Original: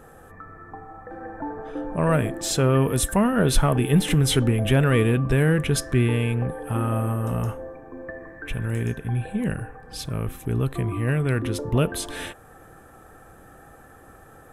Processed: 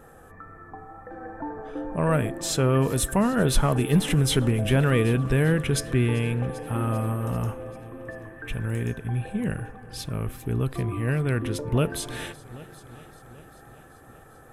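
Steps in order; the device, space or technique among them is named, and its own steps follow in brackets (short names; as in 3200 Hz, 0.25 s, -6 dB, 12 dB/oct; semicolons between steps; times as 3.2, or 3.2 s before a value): multi-head tape echo (multi-head echo 0.392 s, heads first and second, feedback 54%, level -22.5 dB; wow and flutter 21 cents); gain -2 dB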